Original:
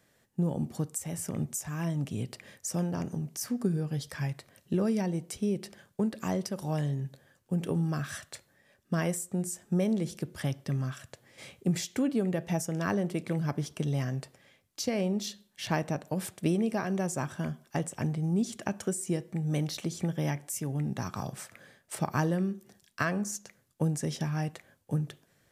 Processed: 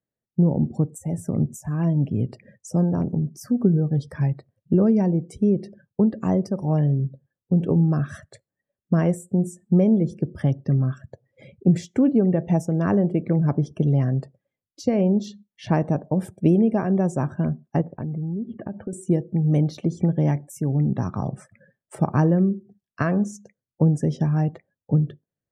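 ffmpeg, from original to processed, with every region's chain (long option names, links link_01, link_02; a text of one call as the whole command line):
ffmpeg -i in.wav -filter_complex "[0:a]asettb=1/sr,asplit=3[link_01][link_02][link_03];[link_01]atrim=end=17.814[link_04];[link_02]atrim=start=17.81:end=18.93,asetpts=PTS-STARTPTS,afade=type=in:duration=0.004:curve=qsin,afade=type=out:start_time=1.116:duration=0.004:curve=qsin,lowpass=frequency=2900:width=0.5412,lowpass=frequency=2900:width=1.3066,agate=range=-33dB:threshold=-50dB:ratio=3:release=100:detection=peak,acompressor=threshold=-36dB:ratio=6:attack=3.2:release=140:knee=1:detection=peak[link_05];[link_03]atrim=start=18.926[link_06];[link_04][link_05]acrossfade=duration=0.004:curve1=hsin:curve2=qsin[link_07];[link_07][link_06]acrossfade=duration=0.004:curve1=qsin:curve2=hsin,afftdn=noise_reduction=30:noise_floor=-46,tiltshelf=frequency=1300:gain=8.5,volume=2.5dB" out.wav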